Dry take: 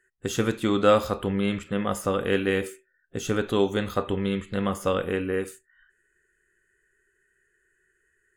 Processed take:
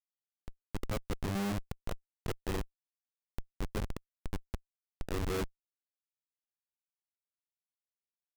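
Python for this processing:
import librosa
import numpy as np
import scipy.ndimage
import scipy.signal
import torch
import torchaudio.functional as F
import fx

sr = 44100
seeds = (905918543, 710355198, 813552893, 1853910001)

y = fx.auto_swell(x, sr, attack_ms=543.0)
y = y + 10.0 ** (-14.5 / 20.0) * np.pad(y, (int(802 * sr / 1000.0), 0))[:len(y)]
y = fx.schmitt(y, sr, flips_db=-28.0)
y = y * librosa.db_to_amplitude(3.5)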